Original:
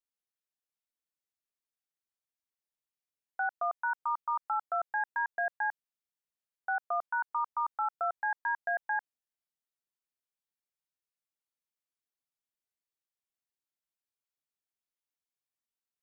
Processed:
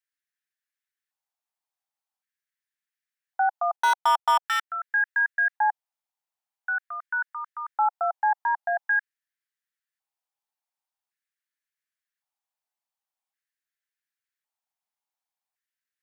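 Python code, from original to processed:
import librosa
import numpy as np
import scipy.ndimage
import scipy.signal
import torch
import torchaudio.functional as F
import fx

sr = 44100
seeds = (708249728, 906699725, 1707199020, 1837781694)

y = fx.leveller(x, sr, passes=5, at=(3.76, 4.7))
y = fx.filter_lfo_highpass(y, sr, shape='square', hz=0.45, low_hz=800.0, high_hz=1700.0, q=4.2)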